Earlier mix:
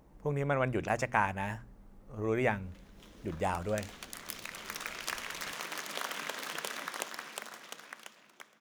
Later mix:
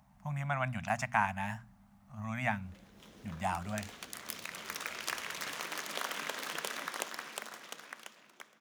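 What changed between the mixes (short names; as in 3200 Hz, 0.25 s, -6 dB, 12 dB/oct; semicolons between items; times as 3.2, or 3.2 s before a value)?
speech: add Chebyshev band-stop 230–680 Hz, order 3; master: add HPF 83 Hz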